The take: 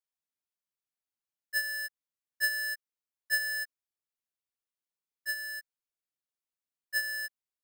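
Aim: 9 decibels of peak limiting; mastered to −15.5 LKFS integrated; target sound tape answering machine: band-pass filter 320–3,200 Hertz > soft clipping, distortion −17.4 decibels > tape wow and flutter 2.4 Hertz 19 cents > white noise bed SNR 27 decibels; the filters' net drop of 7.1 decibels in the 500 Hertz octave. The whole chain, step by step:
parametric band 500 Hz −8.5 dB
brickwall limiter −30.5 dBFS
band-pass filter 320–3,200 Hz
soft clipping −35.5 dBFS
tape wow and flutter 2.4 Hz 19 cents
white noise bed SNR 27 dB
level +24.5 dB

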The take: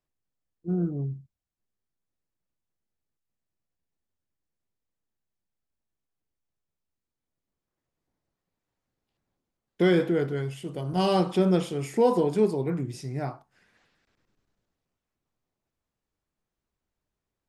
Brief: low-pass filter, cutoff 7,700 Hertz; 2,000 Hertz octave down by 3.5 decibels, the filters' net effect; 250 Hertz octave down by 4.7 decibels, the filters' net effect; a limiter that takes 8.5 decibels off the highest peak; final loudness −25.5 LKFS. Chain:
low-pass filter 7,700 Hz
parametric band 250 Hz −8 dB
parametric band 2,000 Hz −4.5 dB
level +6.5 dB
brickwall limiter −15 dBFS

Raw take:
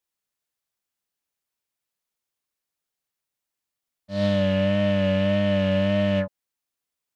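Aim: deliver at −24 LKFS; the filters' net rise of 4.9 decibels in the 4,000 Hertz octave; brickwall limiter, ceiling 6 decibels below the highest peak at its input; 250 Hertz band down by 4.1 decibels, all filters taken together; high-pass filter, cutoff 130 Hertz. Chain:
high-pass filter 130 Hz
parametric band 250 Hz −5 dB
parametric band 4,000 Hz +7.5 dB
level +3 dB
brickwall limiter −14.5 dBFS

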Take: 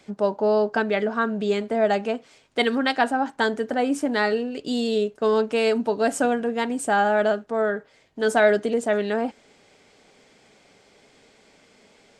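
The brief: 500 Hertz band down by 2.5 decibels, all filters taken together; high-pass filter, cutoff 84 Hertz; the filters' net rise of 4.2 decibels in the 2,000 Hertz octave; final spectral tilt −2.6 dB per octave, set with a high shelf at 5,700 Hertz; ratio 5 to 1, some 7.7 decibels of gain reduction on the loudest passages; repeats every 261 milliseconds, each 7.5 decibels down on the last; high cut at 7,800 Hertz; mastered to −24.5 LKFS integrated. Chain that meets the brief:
high-pass filter 84 Hz
low-pass filter 7,800 Hz
parametric band 500 Hz −3.5 dB
parametric band 2,000 Hz +6.5 dB
high-shelf EQ 5,700 Hz −7 dB
downward compressor 5 to 1, threshold −22 dBFS
repeating echo 261 ms, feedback 42%, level −7.5 dB
level +2.5 dB

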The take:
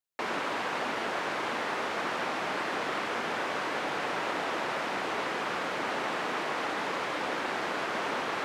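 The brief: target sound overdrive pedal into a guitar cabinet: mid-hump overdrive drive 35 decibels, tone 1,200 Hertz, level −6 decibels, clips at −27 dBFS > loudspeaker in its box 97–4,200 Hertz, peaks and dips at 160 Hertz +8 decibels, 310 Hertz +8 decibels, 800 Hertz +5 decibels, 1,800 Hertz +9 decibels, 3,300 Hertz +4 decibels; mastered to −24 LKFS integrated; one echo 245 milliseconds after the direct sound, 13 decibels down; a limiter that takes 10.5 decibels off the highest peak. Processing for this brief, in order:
brickwall limiter −29 dBFS
single-tap delay 245 ms −13 dB
mid-hump overdrive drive 35 dB, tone 1,200 Hz, level −6 dB, clips at −27 dBFS
loudspeaker in its box 97–4,200 Hz, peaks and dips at 160 Hz +8 dB, 310 Hz +8 dB, 800 Hz +5 dB, 1,800 Hz +9 dB, 3,300 Hz +4 dB
level +7 dB

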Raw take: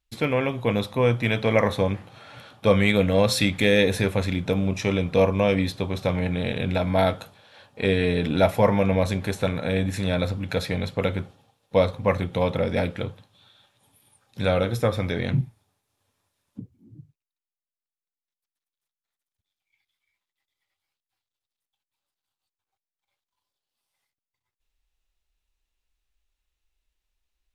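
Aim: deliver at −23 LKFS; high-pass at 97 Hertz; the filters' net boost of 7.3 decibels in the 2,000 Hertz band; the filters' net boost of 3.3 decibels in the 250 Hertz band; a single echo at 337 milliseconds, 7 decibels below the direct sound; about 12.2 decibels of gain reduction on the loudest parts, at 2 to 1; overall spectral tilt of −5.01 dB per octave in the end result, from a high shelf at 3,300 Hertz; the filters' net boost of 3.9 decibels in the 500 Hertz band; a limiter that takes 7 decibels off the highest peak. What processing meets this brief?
high-pass filter 97 Hz
parametric band 250 Hz +4 dB
parametric band 500 Hz +3 dB
parametric band 2,000 Hz +5.5 dB
high-shelf EQ 3,300 Hz +8.5 dB
downward compressor 2 to 1, threshold −33 dBFS
brickwall limiter −19 dBFS
single-tap delay 337 ms −7 dB
level +8 dB

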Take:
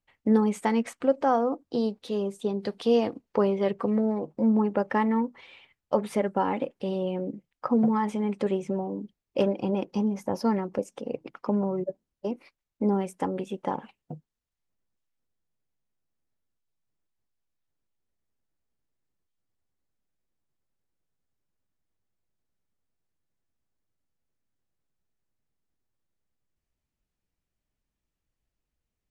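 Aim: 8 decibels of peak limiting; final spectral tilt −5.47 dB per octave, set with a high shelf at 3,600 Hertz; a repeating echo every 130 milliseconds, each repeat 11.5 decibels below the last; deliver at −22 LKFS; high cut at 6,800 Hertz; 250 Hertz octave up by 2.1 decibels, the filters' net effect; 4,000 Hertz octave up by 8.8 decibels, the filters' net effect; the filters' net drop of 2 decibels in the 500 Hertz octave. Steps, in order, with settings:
low-pass filter 6,800 Hz
parametric band 250 Hz +3 dB
parametric band 500 Hz −3.5 dB
high-shelf EQ 3,600 Hz +7.5 dB
parametric band 4,000 Hz +7.5 dB
brickwall limiter −19 dBFS
repeating echo 130 ms, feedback 27%, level −11.5 dB
level +7.5 dB

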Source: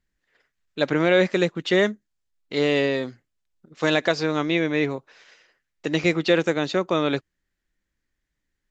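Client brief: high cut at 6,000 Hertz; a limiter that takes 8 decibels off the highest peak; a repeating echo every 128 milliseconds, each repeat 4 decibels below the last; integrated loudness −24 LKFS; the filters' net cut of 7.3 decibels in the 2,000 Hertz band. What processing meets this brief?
low-pass filter 6,000 Hz
parametric band 2,000 Hz −9 dB
brickwall limiter −16 dBFS
repeating echo 128 ms, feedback 63%, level −4 dB
level +2 dB

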